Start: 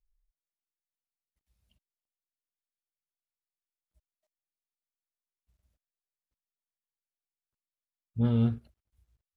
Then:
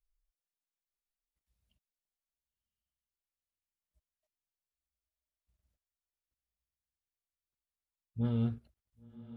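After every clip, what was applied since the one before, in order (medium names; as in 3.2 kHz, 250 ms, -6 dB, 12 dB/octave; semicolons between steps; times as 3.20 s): echo that smears into a reverb 1057 ms, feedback 41%, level -16 dB; trim -6 dB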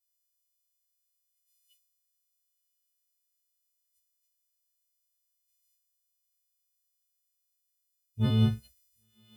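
partials quantised in pitch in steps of 3 st; three bands expanded up and down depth 100%; trim +3.5 dB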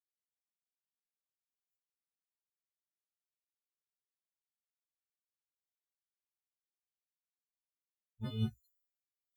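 expander on every frequency bin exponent 3; trim -8.5 dB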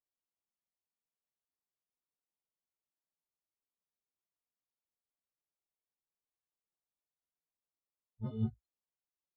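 flange 1.4 Hz, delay 1.5 ms, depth 5 ms, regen -51%; Savitzky-Golay filter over 65 samples; trim +5 dB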